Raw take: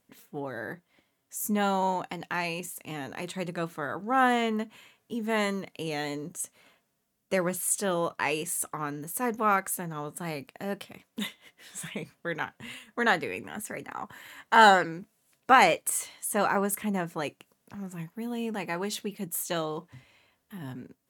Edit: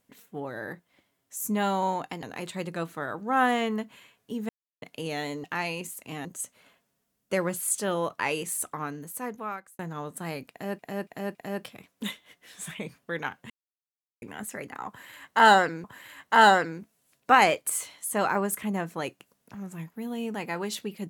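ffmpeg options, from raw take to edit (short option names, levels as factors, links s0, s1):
-filter_complex "[0:a]asplit=13[s0][s1][s2][s3][s4][s5][s6][s7][s8][s9][s10][s11][s12];[s0]atrim=end=2.232[s13];[s1]atrim=start=3.038:end=5.3,asetpts=PTS-STARTPTS,afade=t=out:st=2.258:d=0.004:c=hsin[s14];[s2]atrim=start=5.3:end=5.63,asetpts=PTS-STARTPTS,volume=0[s15];[s3]atrim=start=5.63:end=6.252,asetpts=PTS-STARTPTS,afade=t=in:d=0.004:c=hsin[s16];[s4]atrim=start=2.228:end=3.042[s17];[s5]atrim=start=6.248:end=9.79,asetpts=PTS-STARTPTS,afade=t=out:st=2.552:d=0.99[s18];[s6]atrim=start=9.79:end=10.792,asetpts=PTS-STARTPTS,afade=t=in:d=0.004:c=hsin[s19];[s7]atrim=start=10.508:end=10.792[s20];[s8]atrim=start=10.508:end=10.792[s21];[s9]atrim=start=10.508:end=12.66,asetpts=PTS-STARTPTS,afade=t=out:st=2.148:d=0.004:c=hsin[s22];[s10]atrim=start=12.66:end=13.38,asetpts=PTS-STARTPTS,volume=0[s23];[s11]atrim=start=13.38:end=15.002,asetpts=PTS-STARTPTS,afade=t=in:d=0.004:c=hsin[s24];[s12]atrim=start=14.038[s25];[s14][s15][s16]concat=n=3:v=0:a=1[s26];[s13][s26]acrossfade=d=0.004:c1=hsin:c2=hsin[s27];[s27][s17]acrossfade=d=0.004:c1=hsin:c2=hsin[s28];[s18][s19]concat=n=2:v=0:a=1[s29];[s28][s29]acrossfade=d=0.004:c1=hsin:c2=hsin[s30];[s30][s20]acrossfade=d=0.004:c1=hsin:c2=hsin[s31];[s31][s21]acrossfade=d=0.004:c1=hsin:c2=hsin[s32];[s22][s23][s24]concat=n=3:v=0:a=1[s33];[s32][s33]acrossfade=d=0.004:c1=hsin:c2=hsin[s34];[s34][s25]acrossfade=d=0.004:c1=hsin:c2=hsin"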